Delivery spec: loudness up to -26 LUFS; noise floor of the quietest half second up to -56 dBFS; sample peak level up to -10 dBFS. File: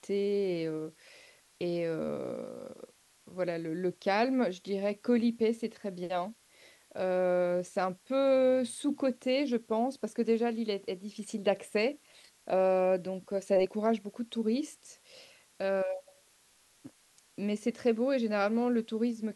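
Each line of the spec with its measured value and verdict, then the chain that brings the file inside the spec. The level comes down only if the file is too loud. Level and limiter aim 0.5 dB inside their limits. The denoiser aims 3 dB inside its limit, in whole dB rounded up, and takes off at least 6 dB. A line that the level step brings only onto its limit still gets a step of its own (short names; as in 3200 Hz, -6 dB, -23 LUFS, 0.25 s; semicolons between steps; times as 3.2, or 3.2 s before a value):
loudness -31.5 LUFS: OK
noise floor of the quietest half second -65 dBFS: OK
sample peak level -14.5 dBFS: OK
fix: none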